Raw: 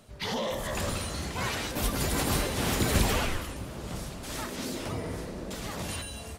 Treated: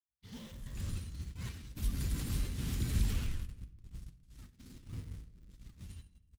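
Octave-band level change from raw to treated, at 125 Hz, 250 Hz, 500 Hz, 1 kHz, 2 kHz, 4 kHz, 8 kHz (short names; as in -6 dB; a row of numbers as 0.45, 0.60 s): -5.0, -11.5, -23.5, -24.5, -19.0, -16.5, -15.0 dB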